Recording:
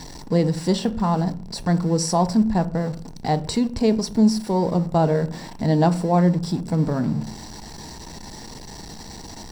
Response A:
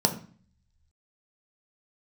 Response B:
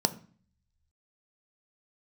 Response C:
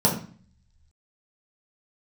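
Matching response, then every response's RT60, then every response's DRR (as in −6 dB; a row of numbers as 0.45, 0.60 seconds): B; 0.45, 0.45, 0.45 seconds; 4.0, 10.0, −4.5 decibels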